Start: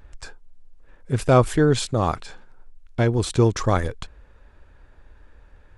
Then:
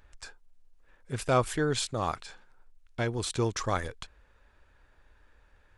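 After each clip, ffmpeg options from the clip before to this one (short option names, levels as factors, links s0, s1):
-af "tiltshelf=f=730:g=-4.5,volume=0.398"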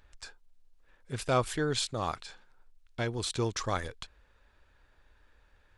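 -af "equalizer=f=4000:w=1.3:g=4,volume=0.75"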